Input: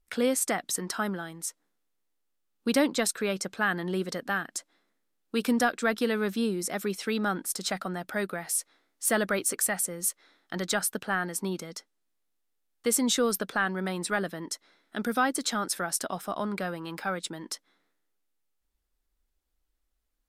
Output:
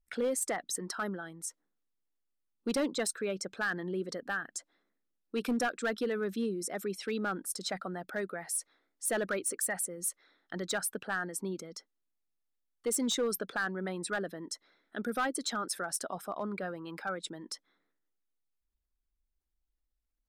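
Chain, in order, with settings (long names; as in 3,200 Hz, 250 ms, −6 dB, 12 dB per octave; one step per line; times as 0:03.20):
spectral envelope exaggerated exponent 1.5
gain into a clipping stage and back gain 20.5 dB
level −5 dB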